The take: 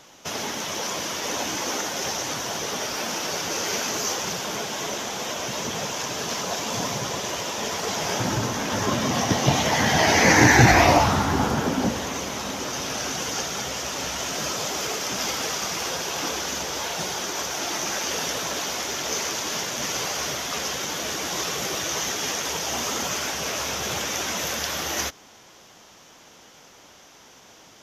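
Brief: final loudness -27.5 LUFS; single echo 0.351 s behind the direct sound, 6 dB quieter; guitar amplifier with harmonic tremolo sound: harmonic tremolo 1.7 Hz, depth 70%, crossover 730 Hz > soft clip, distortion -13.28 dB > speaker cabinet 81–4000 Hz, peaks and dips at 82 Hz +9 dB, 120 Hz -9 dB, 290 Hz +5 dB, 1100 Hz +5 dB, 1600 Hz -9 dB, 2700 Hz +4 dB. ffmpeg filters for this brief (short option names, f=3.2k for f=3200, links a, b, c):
-filter_complex "[0:a]aecho=1:1:351:0.501,acrossover=split=730[a][b];[a]aeval=exprs='val(0)*(1-0.7/2+0.7/2*cos(2*PI*1.7*n/s))':c=same[c];[b]aeval=exprs='val(0)*(1-0.7/2-0.7/2*cos(2*PI*1.7*n/s))':c=same[d];[c][d]amix=inputs=2:normalize=0,asoftclip=threshold=-15.5dB,highpass=81,equalizer=f=82:t=q:w=4:g=9,equalizer=f=120:t=q:w=4:g=-9,equalizer=f=290:t=q:w=4:g=5,equalizer=f=1.1k:t=q:w=4:g=5,equalizer=f=1.6k:t=q:w=4:g=-9,equalizer=f=2.7k:t=q:w=4:g=4,lowpass=f=4k:w=0.5412,lowpass=f=4k:w=1.3066,volume=1.5dB"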